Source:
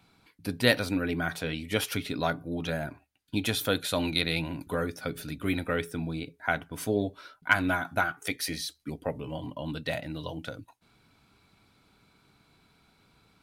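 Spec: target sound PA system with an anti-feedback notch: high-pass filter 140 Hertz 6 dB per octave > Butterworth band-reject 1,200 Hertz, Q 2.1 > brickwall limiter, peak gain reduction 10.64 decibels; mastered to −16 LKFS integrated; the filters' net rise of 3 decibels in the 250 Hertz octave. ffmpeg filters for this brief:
ffmpeg -i in.wav -af "highpass=frequency=140:poles=1,asuperstop=centerf=1200:order=8:qfactor=2.1,equalizer=frequency=250:width_type=o:gain=5,volume=16.5dB,alimiter=limit=-1.5dB:level=0:latency=1" out.wav

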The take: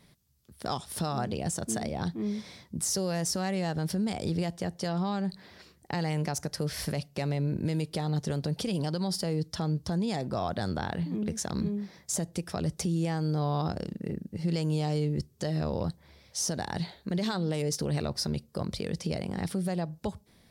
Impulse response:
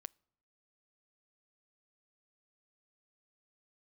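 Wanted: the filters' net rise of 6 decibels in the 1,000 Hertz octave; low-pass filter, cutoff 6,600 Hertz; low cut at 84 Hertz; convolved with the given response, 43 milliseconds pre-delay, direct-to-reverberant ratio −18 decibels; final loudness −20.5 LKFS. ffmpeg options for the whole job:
-filter_complex "[0:a]highpass=84,lowpass=6600,equalizer=frequency=1000:width_type=o:gain=8.5,asplit=2[link_01][link_02];[1:a]atrim=start_sample=2205,adelay=43[link_03];[link_02][link_03]afir=irnorm=-1:irlink=0,volume=24dB[link_04];[link_01][link_04]amix=inputs=2:normalize=0,volume=-7.5dB"

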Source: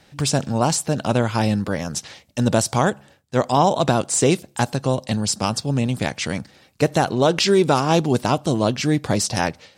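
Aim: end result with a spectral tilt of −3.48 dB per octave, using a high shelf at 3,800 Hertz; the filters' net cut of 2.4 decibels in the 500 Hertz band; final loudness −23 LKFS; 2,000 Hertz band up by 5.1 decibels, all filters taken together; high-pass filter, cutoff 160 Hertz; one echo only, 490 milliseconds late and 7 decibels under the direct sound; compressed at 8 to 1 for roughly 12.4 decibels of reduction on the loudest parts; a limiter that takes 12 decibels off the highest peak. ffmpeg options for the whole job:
ffmpeg -i in.wav -af "highpass=160,equalizer=frequency=500:width_type=o:gain=-3.5,equalizer=frequency=2000:width_type=o:gain=6,highshelf=frequency=3800:gain=4,acompressor=threshold=-26dB:ratio=8,alimiter=limit=-21dB:level=0:latency=1,aecho=1:1:490:0.447,volume=10dB" out.wav

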